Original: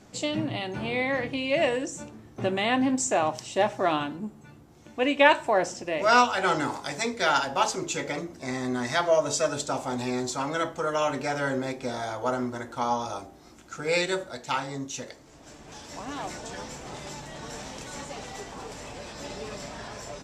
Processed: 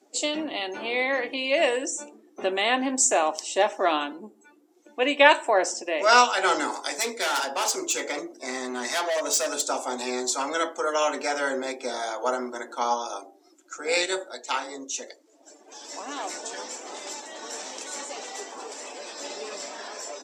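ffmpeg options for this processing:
-filter_complex "[0:a]asettb=1/sr,asplit=3[a][b][c];[a]atrim=end=6.974[d];[b]atrim=start=6.97:end=9.62,asetpts=PTS-STARTPTS,afade=t=in:d=0.004:c=qsin,afade=t=out:st=2.646:d=0.004:c=qsin,asoftclip=type=hard:threshold=-25.5dB[e];[c]atrim=start=9.616[f];[d][e]acrossfade=d=0.004:c1=hsin:c2=qsin[g];[g][f]acrossfade=d=0.004:c1=qsin:c2=hsin,asettb=1/sr,asplit=3[h][i][j];[h]atrim=end=12.944[k];[i]atrim=start=12.94:end=15.81,asetpts=PTS-STARTPTS,afade=t=in:d=0.004:c=qsin,afade=t=out:st=2.866:d=0.004:c=qsin,tremolo=f=230:d=0.4[l];[j]atrim=start=15.806[m];[k][l]acrossfade=d=0.004:c1=hsin:c2=qsin[n];[n][m]acrossfade=d=0.004:c1=qsin:c2=hsin,highpass=f=300:w=0.5412,highpass=f=300:w=1.3066,aemphasis=mode=production:type=cd,afftdn=nr=16:nf=-48,volume=2dB"

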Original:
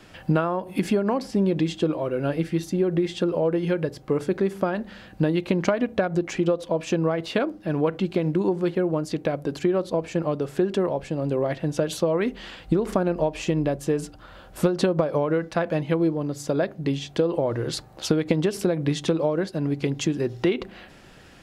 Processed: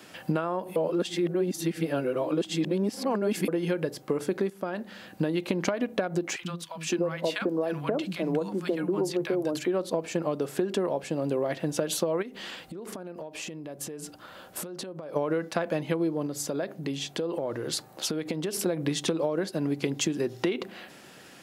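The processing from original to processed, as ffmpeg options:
-filter_complex "[0:a]asettb=1/sr,asplit=3[a][b][c];[a]atrim=end=6.364[d];[b]atrim=start=6.36:end=9.68,asetpts=PTS-STARTPTS,afade=t=in:d=0.004:c=qsin,afade=t=out:st=3.316:d=0.004:c=qsin,acrossover=split=190|1000[e][f][g];[e]adelay=60[h];[f]adelay=530[i];[h][i][g]amix=inputs=3:normalize=0,atrim=end_sample=146412[j];[c]atrim=start=9.676[k];[d][j]acrossfade=d=0.004:c1=hsin:c2=qsin[l];[l][k]acrossfade=d=0.004:c1=qsin:c2=hsin,asplit=3[m][n][o];[m]afade=t=out:st=12.21:d=0.02[p];[n]acompressor=threshold=-34dB:ratio=16:attack=3.2:release=140:knee=1:detection=peak,afade=t=in:st=12.21:d=0.02,afade=t=out:st=15.15:d=0.02[q];[o]afade=t=in:st=15.15:d=0.02[r];[p][q][r]amix=inputs=3:normalize=0,asettb=1/sr,asplit=3[s][t][u];[s]atrim=end=16.264[v];[t]atrim=start=16.26:end=18.66,asetpts=PTS-STARTPTS,afade=t=in:d=0.004:c=qsin,afade=t=out:st=2.396:d=0.004:c=qsin,acompressor=threshold=-29dB:ratio=2.5:attack=3.2:release=140:knee=1:detection=peak[w];[u]atrim=start=18.656[x];[v][w]acrossfade=d=0.004:c1=hsin:c2=qsin[y];[y][x]acrossfade=d=0.004:c1=qsin:c2=hsin,asplit=4[z][aa][ab][ac];[z]atrim=end=0.762[ad];[aa]atrim=start=0.758:end=3.482,asetpts=PTS-STARTPTS,areverse[ae];[ab]atrim=start=3.478:end=4.5,asetpts=PTS-STARTPTS,afade=t=out:st=1.018:d=0.004:c=hsin:silence=0.188365[af];[ac]atrim=start=4.5,asetpts=PTS-STARTPTS,afade=t=in:d=0.58:silence=0.188365[ag];[ad][ae]acrossfade=d=0.004:c1=hsin:c2=hsin[ah];[af][ag]concat=n=2:v=0:a=1[ai];[ah][ai]acrossfade=d=0.004:c1=hsin:c2=hsin,highpass=180,highshelf=f=8.2k:g=11.5,acompressor=threshold=-23dB:ratio=6"

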